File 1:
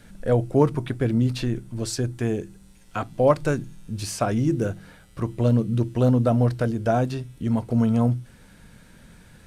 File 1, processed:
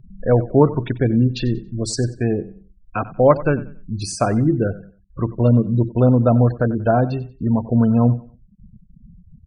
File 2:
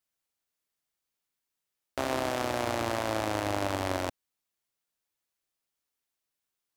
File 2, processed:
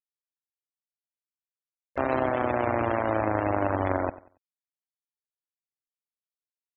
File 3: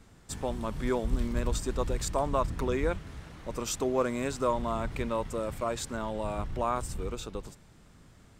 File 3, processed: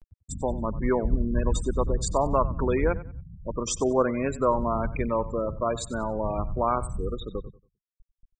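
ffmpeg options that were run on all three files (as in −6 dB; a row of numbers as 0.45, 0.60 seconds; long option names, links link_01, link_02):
-af "afftfilt=real='re*gte(hypot(re,im),0.0251)':imag='im*gte(hypot(re,im),0.0251)':win_size=1024:overlap=0.75,acompressor=mode=upward:threshold=-43dB:ratio=2.5,aecho=1:1:93|186|279:0.141|0.0396|0.0111,volume=5dB"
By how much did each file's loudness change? +5.0, +4.5, +5.0 LU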